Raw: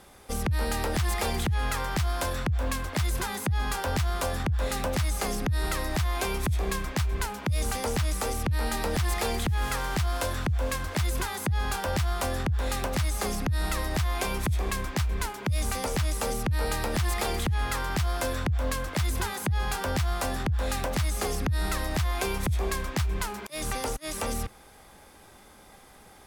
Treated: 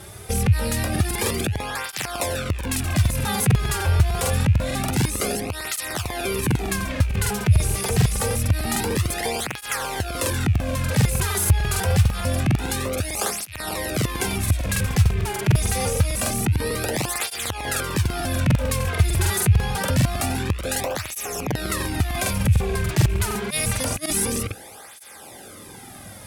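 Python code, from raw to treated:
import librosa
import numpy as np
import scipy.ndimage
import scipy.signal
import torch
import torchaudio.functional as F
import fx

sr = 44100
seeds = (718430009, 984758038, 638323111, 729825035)

p1 = fx.rattle_buzz(x, sr, strikes_db=-37.0, level_db=-31.0)
p2 = fx.over_compress(p1, sr, threshold_db=-35.0, ratio=-1.0)
p3 = p1 + F.gain(torch.from_numpy(p2), -2.0).numpy()
p4 = fx.peak_eq(p3, sr, hz=9100.0, db=-14.0, octaves=0.2, at=(20.83, 21.66))
p5 = fx.spec_repair(p4, sr, seeds[0], start_s=21.09, length_s=0.36, low_hz=1700.0, high_hz=5200.0, source='both')
p6 = fx.graphic_eq_15(p5, sr, hz=(100, 1000, 10000), db=(11, -5, 6))
p7 = fx.buffer_crackle(p6, sr, first_s=0.91, period_s=0.15, block=2048, kind='repeat')
p8 = fx.flanger_cancel(p7, sr, hz=0.26, depth_ms=4.1)
y = F.gain(torch.from_numpy(p8), 5.0).numpy()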